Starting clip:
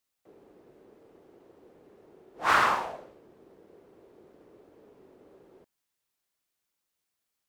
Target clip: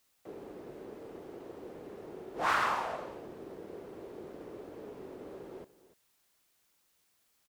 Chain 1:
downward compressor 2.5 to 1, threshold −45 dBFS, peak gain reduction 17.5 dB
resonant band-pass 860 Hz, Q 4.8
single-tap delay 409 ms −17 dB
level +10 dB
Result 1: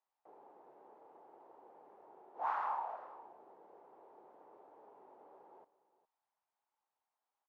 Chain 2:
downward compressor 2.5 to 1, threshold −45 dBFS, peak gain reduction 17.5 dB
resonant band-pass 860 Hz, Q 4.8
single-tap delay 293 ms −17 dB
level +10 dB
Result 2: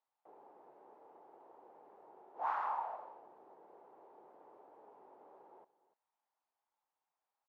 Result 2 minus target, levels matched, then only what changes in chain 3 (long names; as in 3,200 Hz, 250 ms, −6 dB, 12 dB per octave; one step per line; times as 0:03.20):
1,000 Hz band −4.0 dB
remove: resonant band-pass 860 Hz, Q 4.8